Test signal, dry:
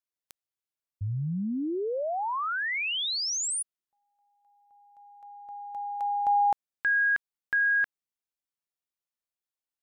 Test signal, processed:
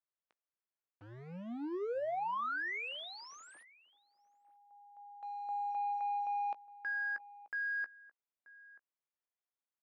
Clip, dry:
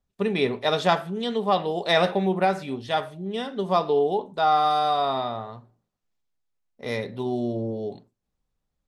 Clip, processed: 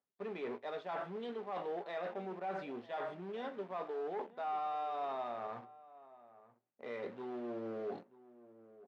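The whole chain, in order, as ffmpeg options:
ffmpeg -i in.wav -filter_complex "[0:a]areverse,acompressor=threshold=-35dB:ratio=12:attack=2.6:release=209:knee=1:detection=rms,areverse,asoftclip=type=hard:threshold=-37dB,asplit=2[link_01][link_02];[link_02]acrusher=bits=7:mix=0:aa=0.000001,volume=-5dB[link_03];[link_01][link_03]amix=inputs=2:normalize=0,highpass=320,lowpass=2000,asplit=2[link_04][link_05];[link_05]adelay=17,volume=-13dB[link_06];[link_04][link_06]amix=inputs=2:normalize=0,asplit=2[link_07][link_08];[link_08]adelay=932.9,volume=-18dB,highshelf=frequency=4000:gain=-21[link_09];[link_07][link_09]amix=inputs=2:normalize=0,volume=-1.5dB" out.wav

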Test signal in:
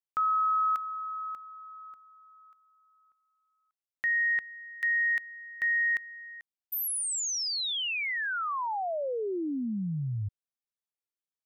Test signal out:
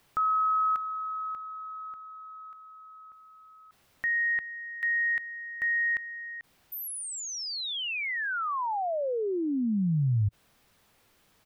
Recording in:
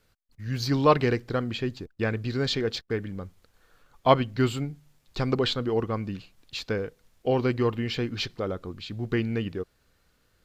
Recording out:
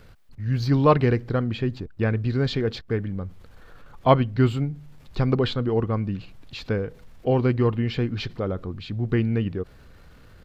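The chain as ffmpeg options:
ffmpeg -i in.wav -filter_complex "[0:a]firequalizer=gain_entry='entry(110,0);entry(320,-5);entry(6600,-16)':delay=0.05:min_phase=1,asplit=2[link_01][link_02];[link_02]acompressor=mode=upward:threshold=-36dB:ratio=2.5:attack=0.23:release=23:knee=2.83:detection=peak,volume=2.5dB[link_03];[link_01][link_03]amix=inputs=2:normalize=0" out.wav

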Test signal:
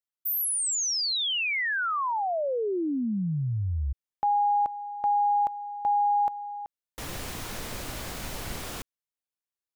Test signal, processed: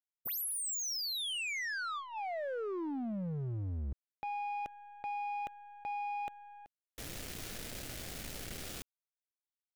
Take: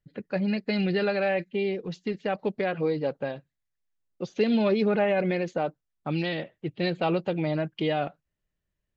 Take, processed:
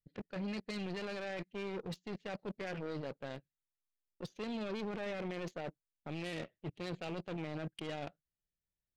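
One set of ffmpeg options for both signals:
ffmpeg -i in.wav -af "equalizer=frequency=1000:width=2.2:gain=-13.5,areverse,acompressor=threshold=-34dB:ratio=16:attack=0.23:release=54:knee=1:detection=peak,areverse,aeval=exprs='0.0299*(cos(1*acos(clip(val(0)/0.0299,-1,1)))-cos(1*PI/2))+0.00944*(cos(3*acos(clip(val(0)/0.0299,-1,1)))-cos(3*PI/2))+0.000944*(cos(5*acos(clip(val(0)/0.0299,-1,1)))-cos(5*PI/2))+0.000299*(cos(7*acos(clip(val(0)/0.0299,-1,1)))-cos(7*PI/2))+0.000299*(cos(8*acos(clip(val(0)/0.0299,-1,1)))-cos(8*PI/2))':channel_layout=same,volume=4dB" out.wav

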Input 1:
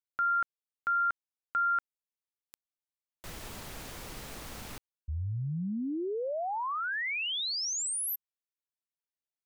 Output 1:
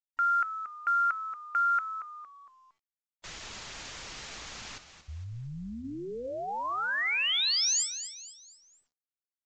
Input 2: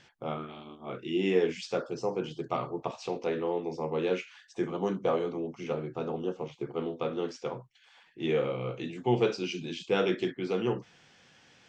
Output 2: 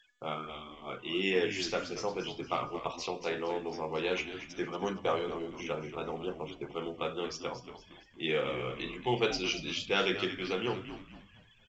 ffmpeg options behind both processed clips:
ffmpeg -i in.wav -filter_complex "[0:a]tiltshelf=frequency=970:gain=-6.5,afftfilt=real='re*gte(hypot(re,im),0.00447)':imag='im*gte(hypot(re,im),0.00447)':win_size=1024:overlap=0.75,bandreject=frequency=246:width_type=h:width=4,bandreject=frequency=492:width_type=h:width=4,bandreject=frequency=738:width_type=h:width=4,bandreject=frequency=984:width_type=h:width=4,bandreject=frequency=1230:width_type=h:width=4,bandreject=frequency=1476:width_type=h:width=4,bandreject=frequency=1722:width_type=h:width=4,bandreject=frequency=1968:width_type=h:width=4,bandreject=frequency=2214:width_type=h:width=4,bandreject=frequency=2460:width_type=h:width=4,bandreject=frequency=2706:width_type=h:width=4,bandreject=frequency=2952:width_type=h:width=4,bandreject=frequency=3198:width_type=h:width=4,bandreject=frequency=3444:width_type=h:width=4,bandreject=frequency=3690:width_type=h:width=4,bandreject=frequency=3936:width_type=h:width=4,bandreject=frequency=4182:width_type=h:width=4,bandreject=frequency=4428:width_type=h:width=4,bandreject=frequency=4674:width_type=h:width=4,bandreject=frequency=4920:width_type=h:width=4,bandreject=frequency=5166:width_type=h:width=4,bandreject=frequency=5412:width_type=h:width=4,bandreject=frequency=5658:width_type=h:width=4,bandreject=frequency=5904:width_type=h:width=4,bandreject=frequency=6150:width_type=h:width=4,asplit=2[link_01][link_02];[link_02]asplit=4[link_03][link_04][link_05][link_06];[link_03]adelay=230,afreqshift=-87,volume=-11dB[link_07];[link_04]adelay=460,afreqshift=-174,volume=-19dB[link_08];[link_05]adelay=690,afreqshift=-261,volume=-26.9dB[link_09];[link_06]adelay=920,afreqshift=-348,volume=-34.9dB[link_10];[link_07][link_08][link_09][link_10]amix=inputs=4:normalize=0[link_11];[link_01][link_11]amix=inputs=2:normalize=0" -ar 16000 -c:a pcm_mulaw out.wav

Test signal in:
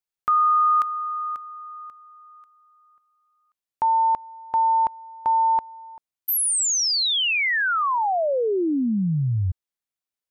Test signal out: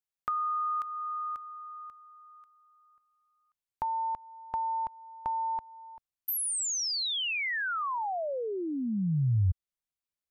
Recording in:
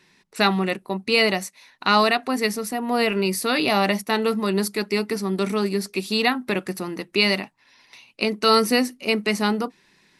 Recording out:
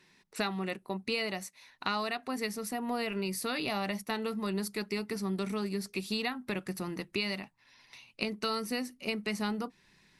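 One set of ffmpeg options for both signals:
ffmpeg -i in.wav -af "acompressor=threshold=-24dB:ratio=6:attack=27:release=393:knee=6:detection=rms,asubboost=boost=2.5:cutoff=170,volume=-5.5dB" out.wav

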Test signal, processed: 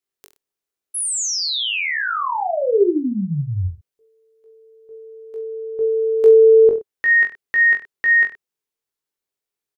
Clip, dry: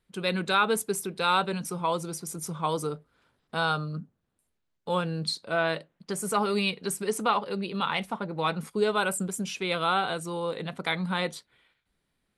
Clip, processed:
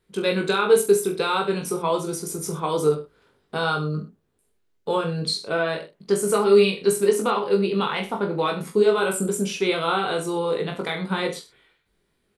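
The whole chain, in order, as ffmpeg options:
ffmpeg -i in.wav -af "alimiter=limit=-18dB:level=0:latency=1:release=216,equalizer=frequency=410:width_type=o:width=0.46:gain=10,aecho=1:1:20|42|66.2|92.82|122.1:0.631|0.398|0.251|0.158|0.1,volume=3dB" out.wav

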